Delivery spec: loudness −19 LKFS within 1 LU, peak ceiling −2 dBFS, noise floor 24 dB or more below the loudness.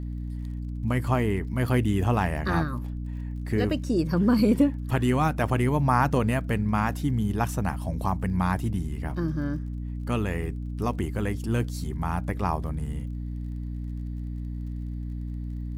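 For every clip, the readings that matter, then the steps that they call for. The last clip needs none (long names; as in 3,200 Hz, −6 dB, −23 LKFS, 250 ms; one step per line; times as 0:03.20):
crackle rate 36 per second; mains hum 60 Hz; hum harmonics up to 300 Hz; level of the hum −30 dBFS; integrated loudness −27.5 LKFS; sample peak −9.5 dBFS; target loudness −19.0 LKFS
→ click removal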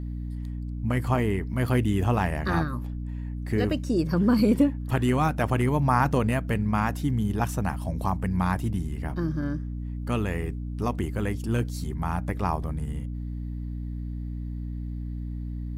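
crackle rate 0.63 per second; mains hum 60 Hz; hum harmonics up to 300 Hz; level of the hum −30 dBFS
→ mains-hum notches 60/120/180/240/300 Hz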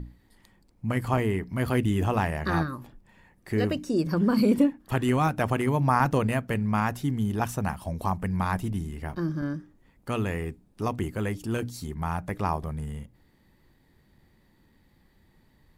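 mains hum none found; integrated loudness −27.5 LKFS; sample peak −9.0 dBFS; target loudness −19.0 LKFS
→ level +8.5 dB
brickwall limiter −2 dBFS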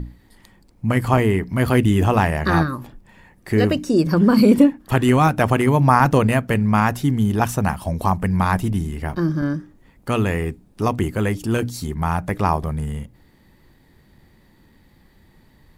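integrated loudness −19.0 LKFS; sample peak −2.0 dBFS; background noise floor −55 dBFS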